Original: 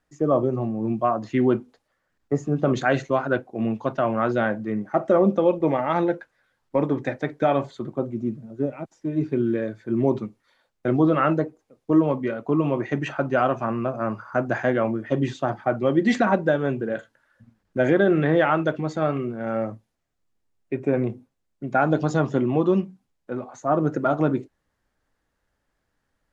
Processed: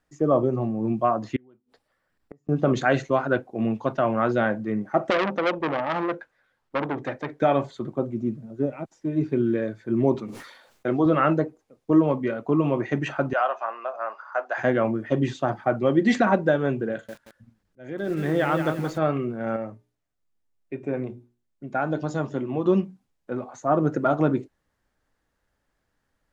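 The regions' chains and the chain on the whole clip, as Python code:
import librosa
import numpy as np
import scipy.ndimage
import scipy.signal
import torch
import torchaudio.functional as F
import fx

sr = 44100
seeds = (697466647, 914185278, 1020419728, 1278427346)

y = fx.chain(x, sr, fx.notch(hz=6500.0, q=6.5),
    fx.gate_flip(shuts_db=-27.0, range_db=-36), at=(1.36, 2.49))
y = fx.chain(y, sr, fx.bass_treble(bass_db=-3, treble_db=-5),
    fx.transformer_sat(knee_hz=1800.0), at=(5.1, 7.4))
y = fx.chain(y, sr, fx.low_shelf(hz=180.0, db=-11.5),
    fx.sustainer(db_per_s=59.0), at=(10.15, 11.06))
y = fx.chain(y, sr, fx.highpass(hz=610.0, slope=24),
    fx.air_absorb(metres=100.0),
    fx.notch(hz=2300.0, q=13.0), at=(13.33, 14.58))
y = fx.chain(y, sr, fx.peak_eq(hz=920.0, db=-4.0, octaves=2.7),
    fx.auto_swell(attack_ms=765.0),
    fx.echo_crushed(ms=175, feedback_pct=35, bits=7, wet_db=-7), at=(16.91, 18.98))
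y = fx.chain(y, sr, fx.hum_notches(base_hz=60, count=7),
    fx.comb_fb(f0_hz=300.0, decay_s=0.35, harmonics='all', damping=0.0, mix_pct=50), at=(19.56, 22.66))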